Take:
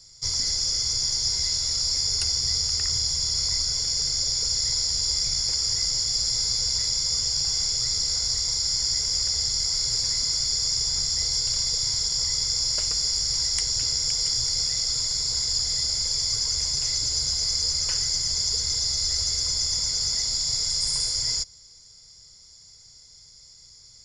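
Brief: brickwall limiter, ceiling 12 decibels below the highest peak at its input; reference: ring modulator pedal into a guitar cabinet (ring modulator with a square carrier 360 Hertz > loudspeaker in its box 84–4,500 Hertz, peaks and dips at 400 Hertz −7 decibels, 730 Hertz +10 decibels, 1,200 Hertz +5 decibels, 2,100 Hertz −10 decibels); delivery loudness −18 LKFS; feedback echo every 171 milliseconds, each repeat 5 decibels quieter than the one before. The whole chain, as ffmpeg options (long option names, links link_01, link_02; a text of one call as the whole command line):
ffmpeg -i in.wav -af "alimiter=limit=-19.5dB:level=0:latency=1,aecho=1:1:171|342|513|684|855|1026|1197:0.562|0.315|0.176|0.0988|0.0553|0.031|0.0173,aeval=exprs='val(0)*sgn(sin(2*PI*360*n/s))':channel_layout=same,highpass=84,equalizer=frequency=400:width_type=q:width=4:gain=-7,equalizer=frequency=730:width_type=q:width=4:gain=10,equalizer=frequency=1200:width_type=q:width=4:gain=5,equalizer=frequency=2100:width_type=q:width=4:gain=-10,lowpass=frequency=4500:width=0.5412,lowpass=frequency=4500:width=1.3066,volume=12.5dB" out.wav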